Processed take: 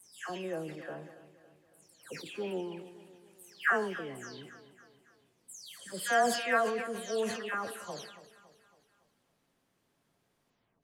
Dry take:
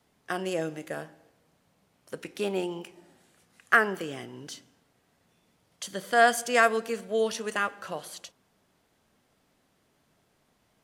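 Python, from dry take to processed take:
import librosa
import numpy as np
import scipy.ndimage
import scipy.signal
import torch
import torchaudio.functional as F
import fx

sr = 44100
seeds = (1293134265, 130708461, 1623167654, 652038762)

p1 = fx.spec_delay(x, sr, highs='early', ms=337)
p2 = p1 + fx.echo_feedback(p1, sr, ms=279, feedback_pct=51, wet_db=-15.5, dry=0)
p3 = fx.sustainer(p2, sr, db_per_s=63.0)
y = F.gain(torch.from_numpy(p3), -6.5).numpy()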